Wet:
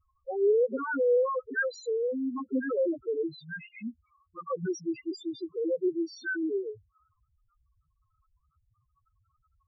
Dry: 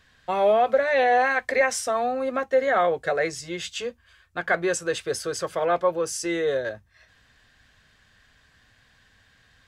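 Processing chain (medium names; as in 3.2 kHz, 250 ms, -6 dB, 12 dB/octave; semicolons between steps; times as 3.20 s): formant shift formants -5 st; loudest bins only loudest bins 2; trim -3 dB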